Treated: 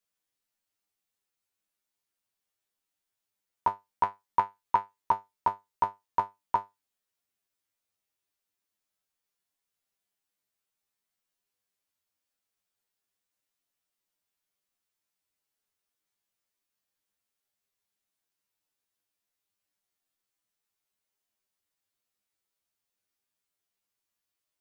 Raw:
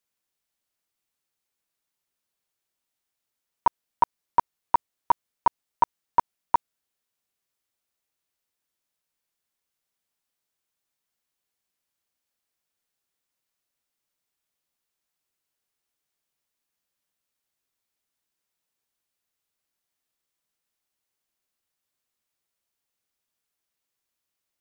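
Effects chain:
0:04.03–0:05.11: dynamic equaliser 2,000 Hz, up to +7 dB, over −36 dBFS, Q 0.87
tuned comb filter 100 Hz, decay 0.19 s, harmonics all, mix 90%
level +3.5 dB

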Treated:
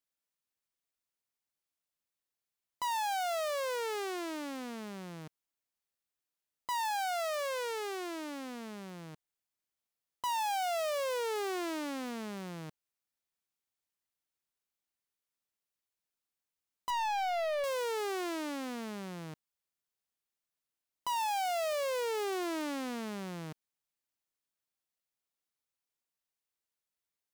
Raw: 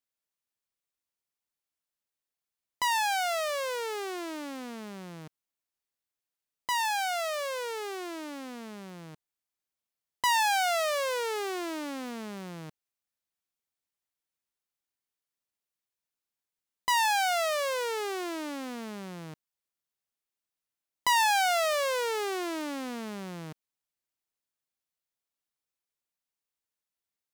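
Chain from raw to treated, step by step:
0:16.90–0:17.64: tilt shelving filter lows +5.5 dB, about 1,400 Hz
hard clipping −30 dBFS, distortion −8 dB
level −1.5 dB

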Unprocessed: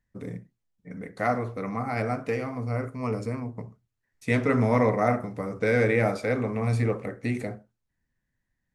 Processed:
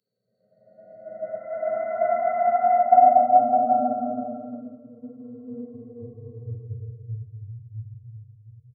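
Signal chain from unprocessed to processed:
expanding power law on the bin magnitudes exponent 3.5
comb filter 2.9 ms, depth 66%
extreme stretch with random phases 24×, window 0.10 s, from 0:01.16
multiband upward and downward expander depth 100%
level −1.5 dB

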